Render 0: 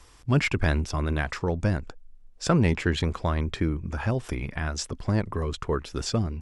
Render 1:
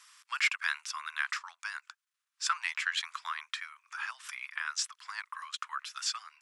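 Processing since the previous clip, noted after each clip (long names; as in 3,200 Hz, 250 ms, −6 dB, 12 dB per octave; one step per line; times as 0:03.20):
Butterworth high-pass 1,100 Hz 48 dB per octave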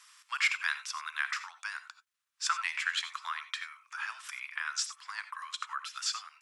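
reverb whose tail is shaped and stops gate 110 ms rising, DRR 11 dB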